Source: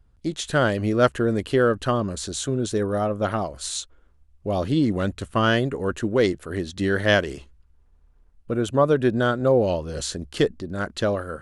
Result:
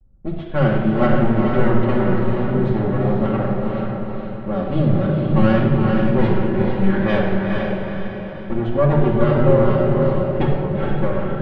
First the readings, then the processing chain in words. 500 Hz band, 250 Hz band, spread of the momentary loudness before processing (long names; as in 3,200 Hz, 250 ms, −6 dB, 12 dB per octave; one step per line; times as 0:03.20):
+3.0 dB, +7.0 dB, 10 LU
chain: lower of the sound and its delayed copy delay 5.3 ms
low-pass that shuts in the quiet parts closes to 850 Hz, open at −18 dBFS
low-shelf EQ 280 Hz +7 dB
pitch vibrato 1.6 Hz 37 cents
high-frequency loss of the air 380 metres
on a send: feedback delay with all-pass diffusion 456 ms, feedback 49%, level −3 dB
on the sum: rectangular room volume 2,200 cubic metres, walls mixed, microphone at 2.3 metres
level −2.5 dB